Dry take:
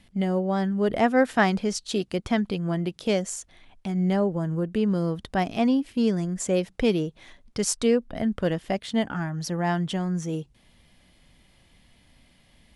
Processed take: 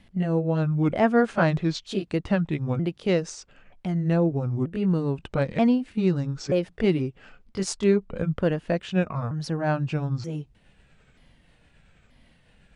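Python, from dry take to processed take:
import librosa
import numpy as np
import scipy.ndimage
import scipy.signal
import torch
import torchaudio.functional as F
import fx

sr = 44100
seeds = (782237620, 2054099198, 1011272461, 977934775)

y = fx.pitch_ramps(x, sr, semitones=-5.5, every_ms=931)
y = fx.high_shelf(y, sr, hz=4700.0, db=-10.5)
y = y * librosa.db_to_amplitude(2.0)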